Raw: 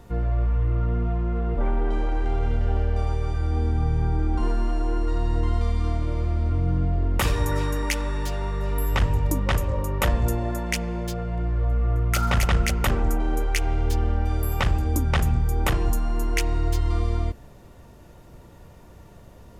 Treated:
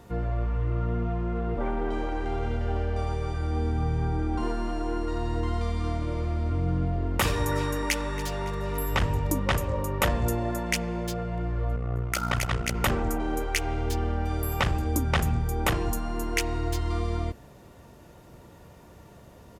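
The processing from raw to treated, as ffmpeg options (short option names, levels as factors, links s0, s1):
-filter_complex "[0:a]asplit=2[s0][s1];[s1]afade=t=in:st=7.84:d=0.01,afade=t=out:st=8.26:d=0.01,aecho=0:1:280|560|840|1120|1400:0.16788|0.0839402|0.0419701|0.0209851|0.0104925[s2];[s0][s2]amix=inputs=2:normalize=0,asettb=1/sr,asplit=3[s3][s4][s5];[s3]atrim=end=11.764[s6];[s4]atrim=start=11.76:end=12.75,asetpts=PTS-STARTPTS,afade=t=in:d=0.004:c=qsin,afade=t=out:st=0.986:d=0.004:c=qsin,tremolo=f=61:d=0.889[s7];[s5]atrim=start=12.746[s8];[s6][s7]acrossfade=d=0.004:c1=hsin:c2=qsin[s9];[s9][s8]acrossfade=d=0.004:c1=qsin:c2=hsin,highpass=f=100:p=1"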